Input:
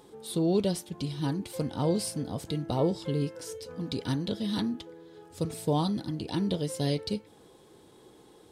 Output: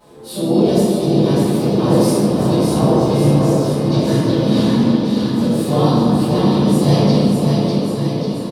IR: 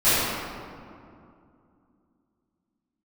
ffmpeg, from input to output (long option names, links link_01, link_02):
-filter_complex "[0:a]aecho=1:1:600|1140|1626|2063|2457:0.631|0.398|0.251|0.158|0.1,asplit=3[link_01][link_02][link_03];[link_02]asetrate=35002,aresample=44100,atempo=1.25992,volume=-10dB[link_04];[link_03]asetrate=52444,aresample=44100,atempo=0.840896,volume=-4dB[link_05];[link_01][link_04][link_05]amix=inputs=3:normalize=0[link_06];[1:a]atrim=start_sample=2205[link_07];[link_06][link_07]afir=irnorm=-1:irlink=0,volume=-9.5dB"